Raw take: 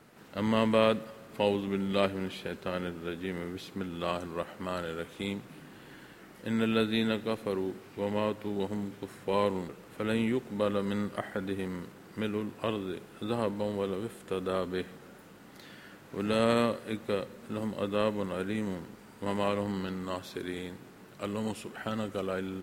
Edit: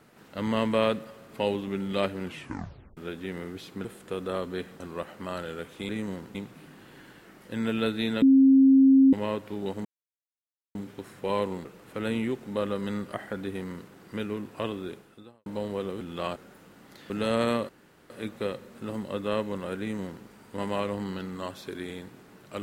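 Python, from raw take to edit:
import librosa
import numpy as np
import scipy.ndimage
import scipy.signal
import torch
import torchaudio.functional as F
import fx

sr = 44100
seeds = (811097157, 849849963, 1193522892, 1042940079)

y = fx.edit(x, sr, fx.tape_stop(start_s=2.24, length_s=0.73),
    fx.swap(start_s=3.85, length_s=0.35, other_s=14.05, other_length_s=0.95),
    fx.bleep(start_s=7.16, length_s=0.91, hz=268.0, db=-13.5),
    fx.insert_silence(at_s=8.79, length_s=0.9),
    fx.fade_out_span(start_s=12.97, length_s=0.53, curve='qua'),
    fx.cut(start_s=15.74, length_s=0.45),
    fx.insert_room_tone(at_s=16.78, length_s=0.41),
    fx.duplicate(start_s=18.48, length_s=0.46, to_s=5.29), tone=tone)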